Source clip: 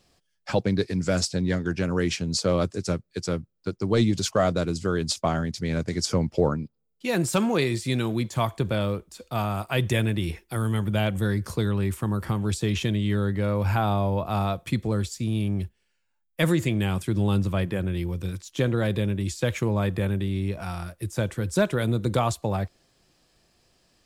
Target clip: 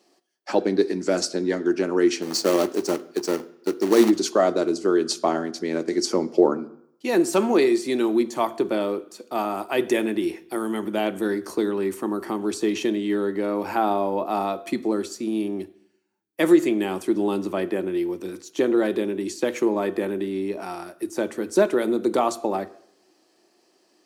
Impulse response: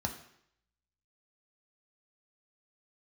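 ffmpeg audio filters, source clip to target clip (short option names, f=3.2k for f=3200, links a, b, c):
-filter_complex "[0:a]asplit=3[a][b][c];[a]afade=t=out:st=2.21:d=0.02[d];[b]acrusher=bits=2:mode=log:mix=0:aa=0.000001,afade=t=in:st=2.21:d=0.02,afade=t=out:st=4.09:d=0.02[e];[c]afade=t=in:st=4.09:d=0.02[f];[d][e][f]amix=inputs=3:normalize=0,highpass=f=340:t=q:w=3.4,asplit=2[g][h];[1:a]atrim=start_sample=2205,lowshelf=f=270:g=-7.5[i];[h][i]afir=irnorm=-1:irlink=0,volume=-8dB[j];[g][j]amix=inputs=2:normalize=0,volume=-2dB"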